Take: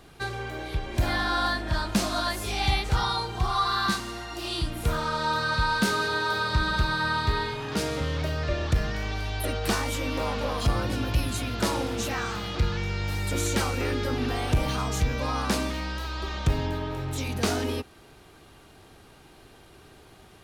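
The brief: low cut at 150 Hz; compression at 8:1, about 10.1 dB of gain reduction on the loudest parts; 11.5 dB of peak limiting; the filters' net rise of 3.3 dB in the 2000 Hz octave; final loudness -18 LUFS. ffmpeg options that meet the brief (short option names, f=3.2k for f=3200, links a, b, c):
-af "highpass=150,equalizer=f=2k:t=o:g=4.5,acompressor=threshold=-31dB:ratio=8,volume=20dB,alimiter=limit=-10dB:level=0:latency=1"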